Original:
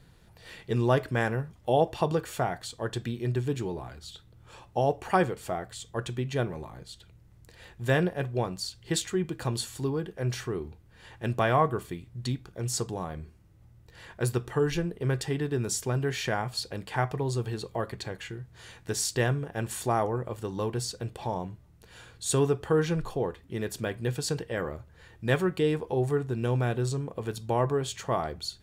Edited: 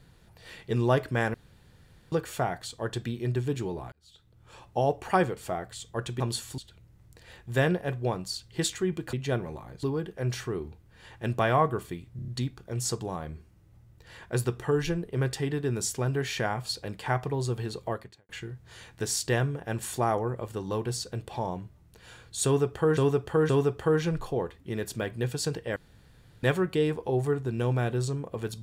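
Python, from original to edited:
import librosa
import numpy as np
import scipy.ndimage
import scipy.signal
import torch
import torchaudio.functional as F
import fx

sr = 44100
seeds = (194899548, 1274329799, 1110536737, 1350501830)

y = fx.edit(x, sr, fx.room_tone_fill(start_s=1.34, length_s=0.78),
    fx.fade_in_span(start_s=3.92, length_s=0.71),
    fx.swap(start_s=6.2, length_s=0.7, other_s=9.45, other_length_s=0.38),
    fx.stutter(start_s=12.16, slice_s=0.03, count=5),
    fx.fade_out_span(start_s=17.78, length_s=0.39, curve='qua'),
    fx.repeat(start_s=22.33, length_s=0.52, count=3),
    fx.room_tone_fill(start_s=24.6, length_s=0.67), tone=tone)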